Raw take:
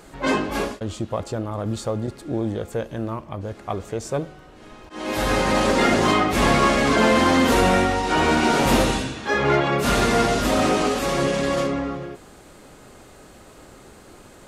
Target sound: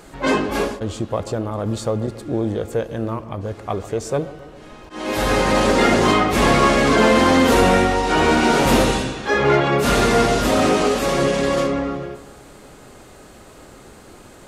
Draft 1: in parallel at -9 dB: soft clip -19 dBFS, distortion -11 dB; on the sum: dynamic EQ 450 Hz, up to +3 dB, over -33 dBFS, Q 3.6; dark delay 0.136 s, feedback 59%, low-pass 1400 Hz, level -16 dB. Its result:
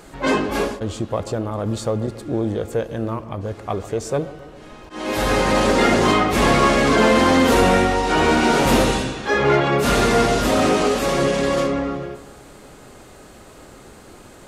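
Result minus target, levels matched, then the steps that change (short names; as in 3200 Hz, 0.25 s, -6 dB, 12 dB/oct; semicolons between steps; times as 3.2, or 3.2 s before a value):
soft clip: distortion +8 dB
change: soft clip -12.5 dBFS, distortion -18 dB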